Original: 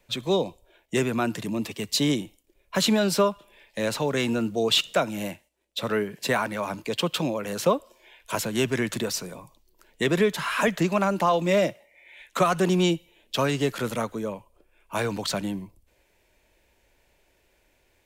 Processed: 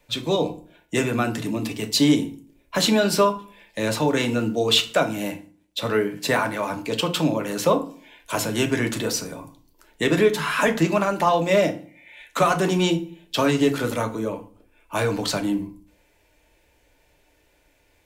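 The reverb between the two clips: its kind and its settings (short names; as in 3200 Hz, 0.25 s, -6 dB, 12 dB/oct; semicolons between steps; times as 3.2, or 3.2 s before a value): FDN reverb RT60 0.41 s, low-frequency decay 1.4×, high-frequency decay 0.7×, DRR 4.5 dB; gain +2 dB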